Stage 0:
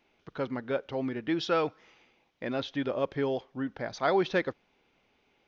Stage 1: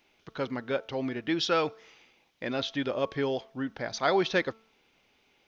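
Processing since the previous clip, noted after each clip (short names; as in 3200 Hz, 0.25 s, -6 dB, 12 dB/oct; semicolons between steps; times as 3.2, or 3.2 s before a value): high shelf 2800 Hz +9.5 dB; de-hum 222.5 Hz, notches 6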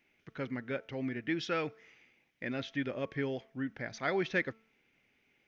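graphic EQ 125/250/1000/2000/4000 Hz +6/+4/-6/+10/-7 dB; gain -8 dB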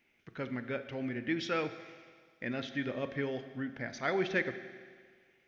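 reverb RT60 1.8 s, pre-delay 4 ms, DRR 9.5 dB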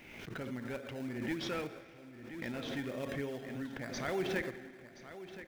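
in parallel at -7 dB: decimation with a swept rate 27×, swing 100% 3.3 Hz; on the sum: echo 1.026 s -13.5 dB; backwards sustainer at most 41 dB/s; gain -7 dB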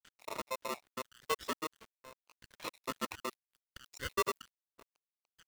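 random spectral dropouts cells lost 84%; crossover distortion -56.5 dBFS; polarity switched at an audio rate 780 Hz; gain +5 dB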